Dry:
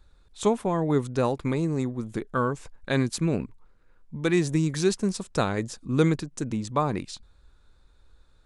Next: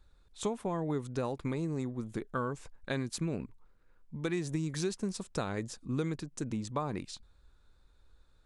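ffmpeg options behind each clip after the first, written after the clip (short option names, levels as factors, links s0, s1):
-af "acompressor=threshold=0.0631:ratio=5,volume=0.531"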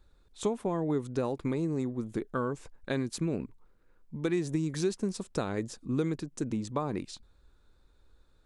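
-af "equalizer=f=340:w=0.86:g=5"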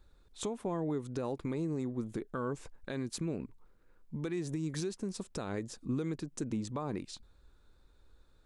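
-af "alimiter=level_in=1.33:limit=0.0631:level=0:latency=1:release=247,volume=0.75"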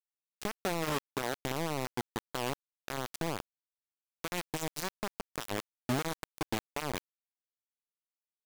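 -af "acrusher=bits=4:mix=0:aa=0.000001"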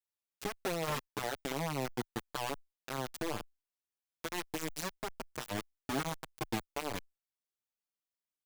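-filter_complex "[0:a]asplit=2[s0][s1];[s1]adelay=6.3,afreqshift=-0.9[s2];[s0][s2]amix=inputs=2:normalize=1,volume=1.12"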